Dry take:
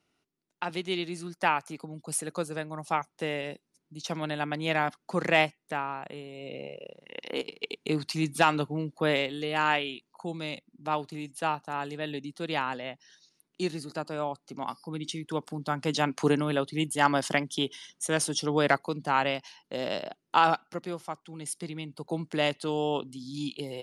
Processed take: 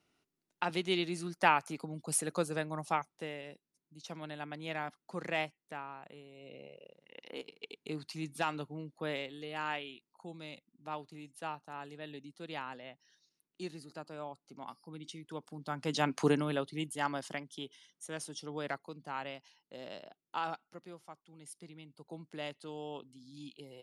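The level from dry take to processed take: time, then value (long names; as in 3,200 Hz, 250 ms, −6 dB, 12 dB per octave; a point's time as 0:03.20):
0:02.77 −1 dB
0:03.36 −11.5 dB
0:15.48 −11.5 dB
0:16.15 −2.5 dB
0:17.45 −14.5 dB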